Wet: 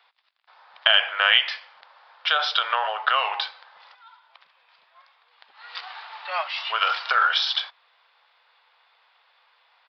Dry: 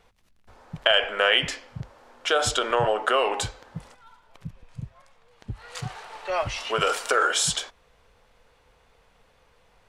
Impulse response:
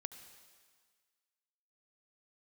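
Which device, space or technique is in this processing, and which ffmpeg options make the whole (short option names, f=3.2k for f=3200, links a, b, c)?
musical greeting card: -af "aresample=11025,aresample=44100,highpass=f=820:w=0.5412,highpass=f=820:w=1.3066,equalizer=f=3.6k:t=o:w=0.21:g=4.5,volume=3dB"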